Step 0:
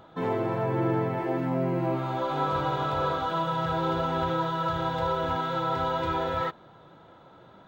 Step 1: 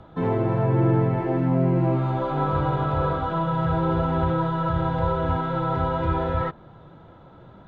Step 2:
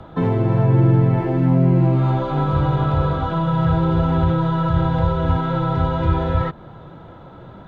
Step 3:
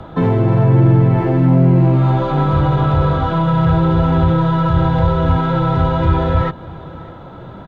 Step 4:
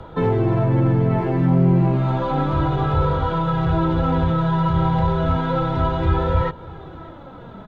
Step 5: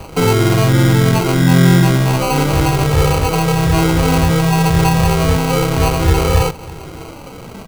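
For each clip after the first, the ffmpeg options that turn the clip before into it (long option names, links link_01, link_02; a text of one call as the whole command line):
ffmpeg -i in.wav -filter_complex "[0:a]aemphasis=mode=reproduction:type=bsi,acrossover=split=130|950|2800[link_01][link_02][link_03][link_04];[link_04]alimiter=level_in=25dB:limit=-24dB:level=0:latency=1:release=230,volume=-25dB[link_05];[link_01][link_02][link_03][link_05]amix=inputs=4:normalize=0,volume=1.5dB" out.wav
ffmpeg -i in.wav -filter_complex "[0:a]acrossover=split=240|3000[link_01][link_02][link_03];[link_02]acompressor=threshold=-30dB:ratio=6[link_04];[link_01][link_04][link_03]amix=inputs=3:normalize=0,volume=7.5dB" out.wav
ffmpeg -i in.wav -filter_complex "[0:a]asplit=2[link_01][link_02];[link_02]asoftclip=type=tanh:threshold=-20dB,volume=-5dB[link_03];[link_01][link_03]amix=inputs=2:normalize=0,aecho=1:1:601:0.0891,volume=2dB" out.wav
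ffmpeg -i in.wav -af "flanger=delay=2.1:depth=3.1:regen=41:speed=0.31:shape=sinusoidal" out.wav
ffmpeg -i in.wav -af "acrusher=samples=25:mix=1:aa=0.000001,volume=6dB" out.wav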